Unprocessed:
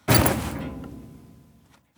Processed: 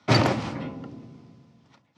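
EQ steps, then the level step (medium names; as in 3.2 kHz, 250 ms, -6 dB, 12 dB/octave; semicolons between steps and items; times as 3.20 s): Chebyshev band-pass 110–5400 Hz, order 3; band-stop 1.6 kHz, Q 13; 0.0 dB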